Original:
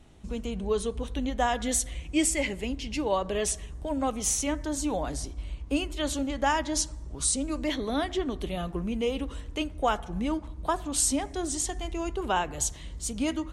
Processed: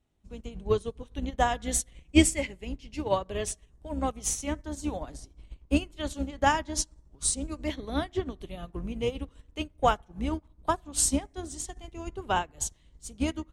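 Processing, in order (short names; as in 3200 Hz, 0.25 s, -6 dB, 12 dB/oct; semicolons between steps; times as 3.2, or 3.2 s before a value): octaver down 2 oct, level -2 dB; added harmonics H 8 -40 dB, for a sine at -12.5 dBFS; upward expander 2.5:1, over -38 dBFS; gain +6.5 dB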